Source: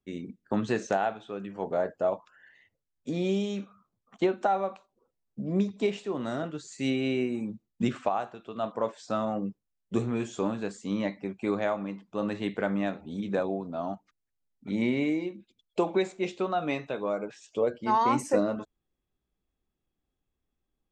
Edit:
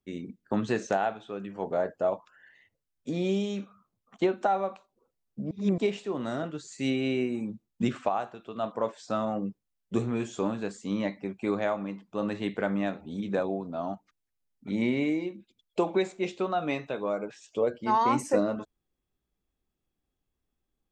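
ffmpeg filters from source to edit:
ffmpeg -i in.wav -filter_complex "[0:a]asplit=3[link_01][link_02][link_03];[link_01]atrim=end=5.512[link_04];[link_02]atrim=start=5.508:end=5.782,asetpts=PTS-STARTPTS,areverse[link_05];[link_03]atrim=start=5.778[link_06];[link_04][link_05]acrossfade=duration=0.004:curve1=hsin:curve2=hsin[link_07];[link_07][link_06]acrossfade=duration=0.004:curve1=hsin:curve2=hsin" out.wav

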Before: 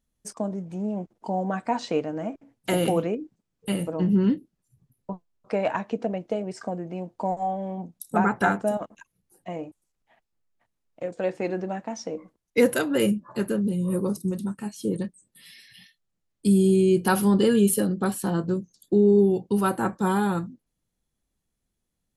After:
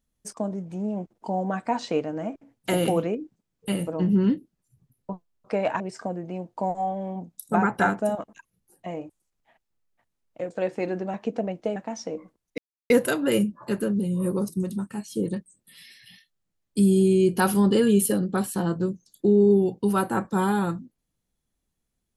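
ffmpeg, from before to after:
ffmpeg -i in.wav -filter_complex "[0:a]asplit=5[link_01][link_02][link_03][link_04][link_05];[link_01]atrim=end=5.802[link_06];[link_02]atrim=start=6.418:end=11.762[link_07];[link_03]atrim=start=5.798:end=6.422[link_08];[link_04]atrim=start=11.758:end=12.58,asetpts=PTS-STARTPTS,afade=type=out:start_time=0.818:duration=0.004:curve=hsin,apad=pad_dur=0.32[link_09];[link_05]atrim=start=12.58,asetpts=PTS-STARTPTS,afade=type=in:duration=0.004:curve=hsin[link_10];[link_06][link_07]acrossfade=duration=0.004:curve1=hsin:curve2=hsin[link_11];[link_11][link_08]acrossfade=duration=0.004:curve1=hsin:curve2=hsin[link_12];[link_09][link_10]concat=n=2:v=0:a=1[link_13];[link_12][link_13]acrossfade=duration=0.004:curve1=hsin:curve2=hsin" out.wav

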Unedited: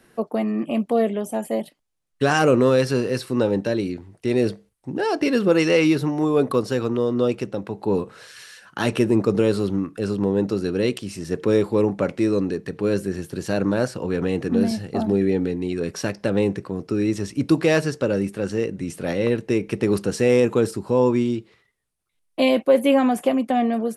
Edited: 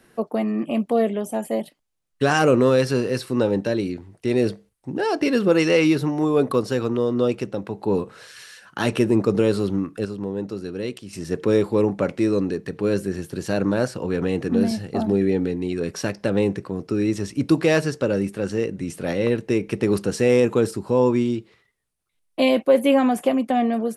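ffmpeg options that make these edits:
ffmpeg -i in.wav -filter_complex "[0:a]asplit=3[link_01][link_02][link_03];[link_01]atrim=end=10.052[link_04];[link_02]atrim=start=10.048:end=11.132,asetpts=PTS-STARTPTS,volume=-7dB[link_05];[link_03]atrim=start=11.128[link_06];[link_04][link_05]acrossfade=duration=0.004:curve1=hsin:curve2=hsin[link_07];[link_07][link_06]acrossfade=duration=0.004:curve1=hsin:curve2=hsin" out.wav

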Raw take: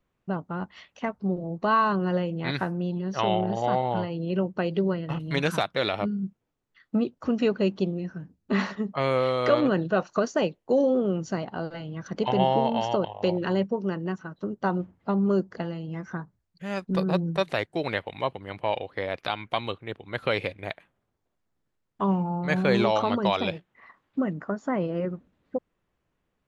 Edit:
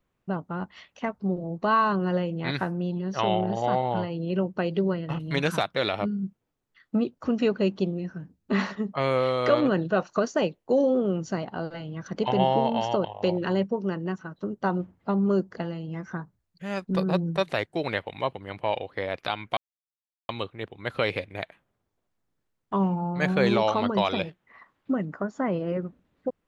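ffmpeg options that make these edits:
ffmpeg -i in.wav -filter_complex "[0:a]asplit=2[link_01][link_02];[link_01]atrim=end=19.57,asetpts=PTS-STARTPTS,afade=type=out:start_time=19.566:duration=0.004:curve=hsin,apad=pad_dur=0.72[link_03];[link_02]atrim=start=19.57,asetpts=PTS-STARTPTS,afade=type=in:duration=0.004:curve=hsin[link_04];[link_03][link_04]concat=n=2:v=0:a=1" out.wav

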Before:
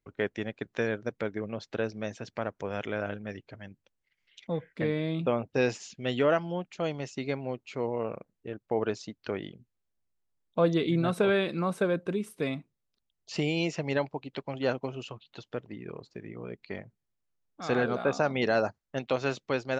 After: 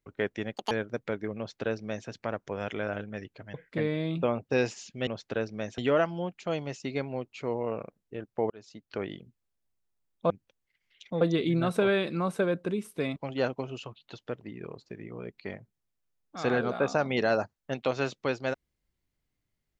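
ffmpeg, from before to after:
ffmpeg -i in.wav -filter_complex "[0:a]asplit=10[link_01][link_02][link_03][link_04][link_05][link_06][link_07][link_08][link_09][link_10];[link_01]atrim=end=0.564[link_11];[link_02]atrim=start=0.56:end=0.84,asetpts=PTS-STARTPTS,asetrate=81585,aresample=44100[link_12];[link_03]atrim=start=0.836:end=3.672[link_13];[link_04]atrim=start=4.578:end=6.112[link_14];[link_05]atrim=start=1.498:end=2.212[link_15];[link_06]atrim=start=6.108:end=8.83,asetpts=PTS-STARTPTS,afade=type=out:start_time=2.718:duration=0.004:curve=hsin[link_16];[link_07]atrim=start=8.83:end=10.632,asetpts=PTS-STARTPTS,afade=type=in:duration=0.54[link_17];[link_08]atrim=start=3.668:end=4.582[link_18];[link_09]atrim=start=10.628:end=12.582[link_19];[link_10]atrim=start=14.408[link_20];[link_11][link_12]acrossfade=duration=0.004:curve1=hsin:curve2=hsin[link_21];[link_21][link_13]acrossfade=duration=0.004:curve1=hsin:curve2=hsin[link_22];[link_22][link_14]acrossfade=duration=0.004:curve1=hsin:curve2=hsin[link_23];[link_23][link_15]acrossfade=duration=0.004:curve1=hsin:curve2=hsin[link_24];[link_16][link_17]concat=n=2:v=0:a=1[link_25];[link_24][link_25]acrossfade=duration=0.004:curve1=hsin:curve2=hsin[link_26];[link_26][link_18]acrossfade=duration=0.004:curve1=hsin:curve2=hsin[link_27];[link_27][link_19]acrossfade=duration=0.004:curve1=hsin:curve2=hsin[link_28];[link_28][link_20]acrossfade=duration=0.004:curve1=hsin:curve2=hsin" out.wav

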